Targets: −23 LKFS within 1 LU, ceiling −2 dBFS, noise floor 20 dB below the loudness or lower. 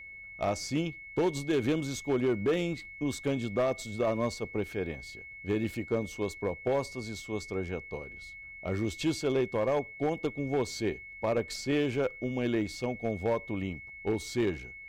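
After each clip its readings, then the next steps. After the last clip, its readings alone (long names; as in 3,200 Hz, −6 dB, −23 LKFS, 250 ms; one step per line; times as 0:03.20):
share of clipped samples 1.3%; peaks flattened at −22.0 dBFS; interfering tone 2,200 Hz; level of the tone −44 dBFS; integrated loudness −32.0 LKFS; sample peak −22.0 dBFS; target loudness −23.0 LKFS
→ clipped peaks rebuilt −22 dBFS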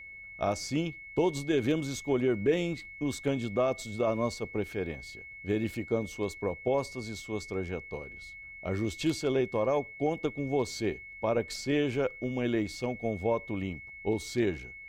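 share of clipped samples 0.0%; interfering tone 2,200 Hz; level of the tone −44 dBFS
→ notch filter 2,200 Hz, Q 30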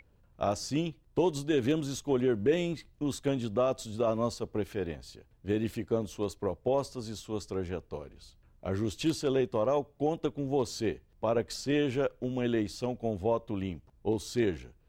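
interfering tone none found; integrated loudness −32.0 LKFS; sample peak −15.5 dBFS; target loudness −23.0 LKFS
→ level +9 dB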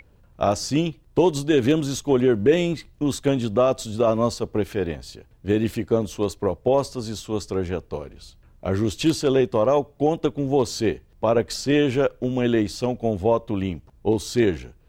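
integrated loudness −23.0 LKFS; sample peak −6.5 dBFS; background noise floor −55 dBFS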